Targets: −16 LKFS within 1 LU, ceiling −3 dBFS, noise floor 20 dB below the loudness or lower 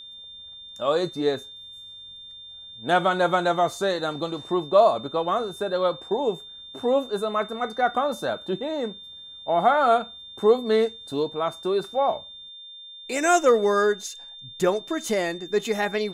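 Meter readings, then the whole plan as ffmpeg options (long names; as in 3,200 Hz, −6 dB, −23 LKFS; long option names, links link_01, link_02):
interfering tone 3,600 Hz; level of the tone −40 dBFS; integrated loudness −24.0 LKFS; sample peak −7.0 dBFS; target loudness −16.0 LKFS
→ -af "bandreject=frequency=3600:width=30"
-af "volume=8dB,alimiter=limit=-3dB:level=0:latency=1"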